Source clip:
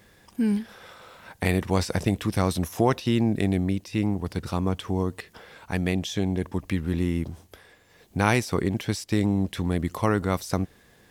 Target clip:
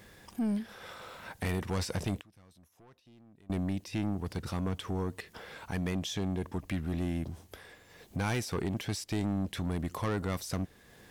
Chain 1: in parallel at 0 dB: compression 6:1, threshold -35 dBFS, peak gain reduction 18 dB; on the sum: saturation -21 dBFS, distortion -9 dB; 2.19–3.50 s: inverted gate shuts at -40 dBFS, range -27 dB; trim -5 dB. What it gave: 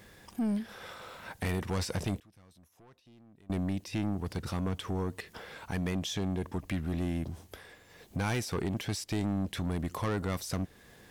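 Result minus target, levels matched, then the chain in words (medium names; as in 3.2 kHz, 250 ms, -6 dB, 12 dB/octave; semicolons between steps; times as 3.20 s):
compression: peak gain reduction -6 dB
in parallel at 0 dB: compression 6:1, threshold -42 dBFS, peak gain reduction 23.5 dB; on the sum: saturation -21 dBFS, distortion -10 dB; 2.19–3.50 s: inverted gate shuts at -40 dBFS, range -27 dB; trim -5 dB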